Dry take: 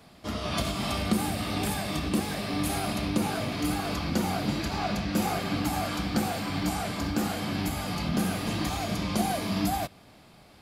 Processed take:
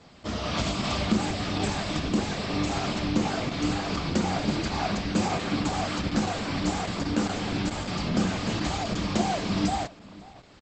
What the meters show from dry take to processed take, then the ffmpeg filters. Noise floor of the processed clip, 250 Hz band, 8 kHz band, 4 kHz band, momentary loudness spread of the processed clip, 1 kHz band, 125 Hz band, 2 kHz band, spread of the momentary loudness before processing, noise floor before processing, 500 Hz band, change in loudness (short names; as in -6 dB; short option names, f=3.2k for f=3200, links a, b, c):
-50 dBFS, +1.5 dB, -0.5 dB, +2.0 dB, 3 LU, +1.0 dB, +1.5 dB, +1.5 dB, 3 LU, -54 dBFS, +2.0 dB, +1.5 dB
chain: -filter_complex "[0:a]asplit=2[a][b];[b]adelay=542.3,volume=-20dB,highshelf=f=4k:g=-12.2[c];[a][c]amix=inputs=2:normalize=0,volume=2dB" -ar 48000 -c:a libopus -b:a 10k